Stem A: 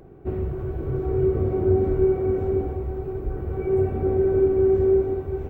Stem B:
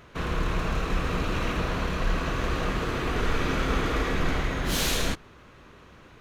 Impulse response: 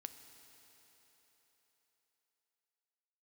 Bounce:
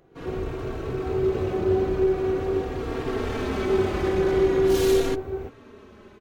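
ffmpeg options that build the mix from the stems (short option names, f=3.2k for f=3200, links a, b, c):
-filter_complex "[0:a]lowshelf=f=320:g=-10,volume=-8dB[a];[1:a]equalizer=f=350:w=0.83:g=11.5,asoftclip=type=hard:threshold=-23.5dB,asplit=2[b][c];[c]adelay=3.7,afreqshift=-0.42[d];[b][d]amix=inputs=2:normalize=1,volume=-10dB,afade=t=in:st=2.67:d=0.59:silence=0.446684[e];[a][e]amix=inputs=2:normalize=0,dynaudnorm=f=110:g=3:m=10.5dB"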